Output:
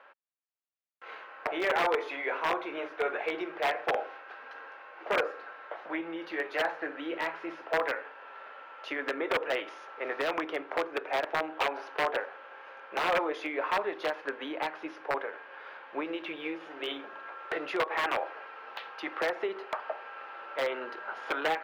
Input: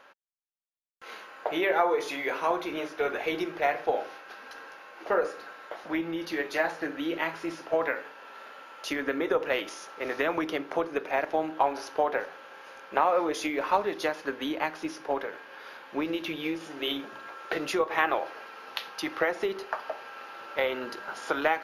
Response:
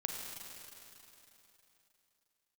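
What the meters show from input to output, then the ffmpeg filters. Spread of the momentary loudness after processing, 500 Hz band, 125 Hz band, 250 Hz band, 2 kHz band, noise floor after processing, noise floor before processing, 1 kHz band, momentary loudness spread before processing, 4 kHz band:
15 LU, -3.5 dB, -8.0 dB, -6.0 dB, -1.0 dB, -50 dBFS, -49 dBFS, -3.0 dB, 17 LU, -2.0 dB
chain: -filter_complex "[0:a]aeval=exprs='(mod(7.94*val(0)+1,2)-1)/7.94':c=same,acrossover=split=350 3100:gain=0.141 1 0.0631[a][b][c];[a][b][c]amix=inputs=3:normalize=0"

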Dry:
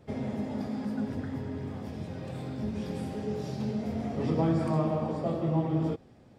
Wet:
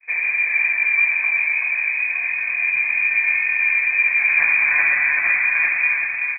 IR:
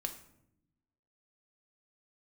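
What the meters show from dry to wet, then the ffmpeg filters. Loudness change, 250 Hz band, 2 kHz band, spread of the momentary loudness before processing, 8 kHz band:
+16.0 dB, under -25 dB, +37.5 dB, 11 LU, under -25 dB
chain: -filter_complex "[0:a]agate=range=-33dB:threshold=-51dB:ratio=3:detection=peak,asplit=2[a][b];[b]adynamicsmooth=sensitivity=7.5:basefreq=1.2k,volume=0.5dB[c];[a][c]amix=inputs=2:normalize=0,asoftclip=type=tanh:threshold=-22dB,aecho=1:1:1.2:0.45,aecho=1:1:381|762|1143|1524|1905:0.668|0.281|0.118|0.0495|0.0208,lowpass=f=2.2k:t=q:w=0.5098,lowpass=f=2.2k:t=q:w=0.6013,lowpass=f=2.2k:t=q:w=0.9,lowpass=f=2.2k:t=q:w=2.563,afreqshift=-2600[d];[1:a]atrim=start_sample=2205,asetrate=42777,aresample=44100[e];[d][e]afir=irnorm=-1:irlink=0,volume=8dB"

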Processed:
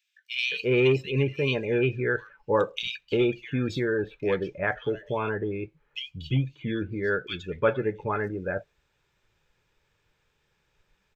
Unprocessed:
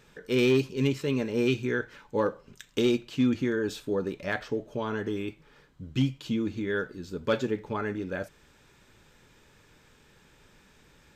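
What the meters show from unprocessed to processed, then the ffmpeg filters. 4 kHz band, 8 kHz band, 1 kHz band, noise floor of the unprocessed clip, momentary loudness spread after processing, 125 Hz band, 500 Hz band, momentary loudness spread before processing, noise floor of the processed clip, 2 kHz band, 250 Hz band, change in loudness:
+3.5 dB, n/a, +4.5 dB, -60 dBFS, 9 LU, +3.5 dB, +3.0 dB, 10 LU, -73 dBFS, +5.0 dB, -2.5 dB, +1.5 dB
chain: -filter_complex "[0:a]afftdn=nr=17:nf=-40,equalizer=f=250:t=o:w=0.67:g=-11,equalizer=f=2.5k:t=o:w=0.67:g=5,equalizer=f=10k:t=o:w=0.67:g=-9,acrossover=split=2300[a][b];[a]adelay=350[c];[c][b]amix=inputs=2:normalize=0,volume=5dB"

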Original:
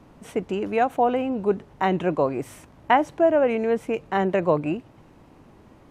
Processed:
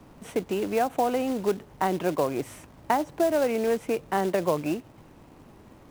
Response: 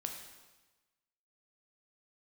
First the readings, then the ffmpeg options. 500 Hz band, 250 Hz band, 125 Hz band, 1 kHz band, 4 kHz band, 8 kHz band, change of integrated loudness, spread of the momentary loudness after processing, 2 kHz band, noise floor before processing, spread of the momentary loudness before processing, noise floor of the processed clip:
-3.5 dB, -3.0 dB, -5.0 dB, -4.5 dB, -0.5 dB, n/a, -3.5 dB, 8 LU, -5.0 dB, -52 dBFS, 11 LU, -52 dBFS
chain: -filter_complex "[0:a]acrossover=split=270|1500[a][b][c];[a]acompressor=threshold=-35dB:ratio=4[d];[b]acompressor=threshold=-22dB:ratio=4[e];[c]acompressor=threshold=-40dB:ratio=4[f];[d][e][f]amix=inputs=3:normalize=0,acrusher=bits=4:mode=log:mix=0:aa=0.000001"

